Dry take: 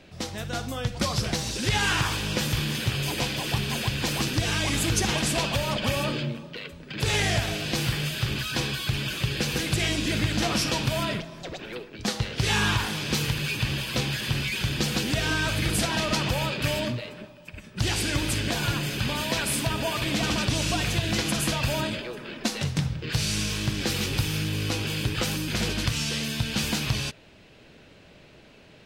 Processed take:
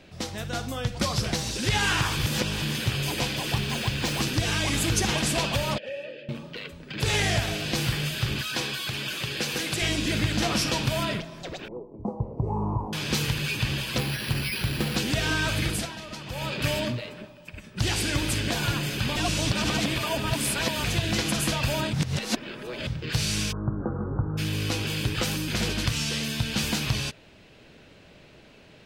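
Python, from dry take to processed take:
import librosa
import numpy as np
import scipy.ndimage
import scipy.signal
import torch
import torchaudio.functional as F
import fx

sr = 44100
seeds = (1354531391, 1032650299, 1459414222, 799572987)

y = fx.median_filter(x, sr, points=3, at=(3.55, 4.18))
y = fx.vowel_filter(y, sr, vowel='e', at=(5.78, 6.29))
y = fx.highpass(y, sr, hz=300.0, slope=6, at=(8.41, 9.82))
y = fx.ellip_lowpass(y, sr, hz=1000.0, order=4, stop_db=40, at=(11.68, 12.93))
y = fx.resample_bad(y, sr, factor=6, down='filtered', up='hold', at=(13.98, 14.96))
y = fx.steep_lowpass(y, sr, hz=1400.0, slope=72, at=(23.51, 24.37), fade=0.02)
y = fx.edit(y, sr, fx.reverse_span(start_s=2.17, length_s=0.45),
    fx.fade_down_up(start_s=15.61, length_s=0.99, db=-13.0, fade_s=0.34),
    fx.reverse_span(start_s=19.16, length_s=1.68),
    fx.reverse_span(start_s=21.93, length_s=0.94), tone=tone)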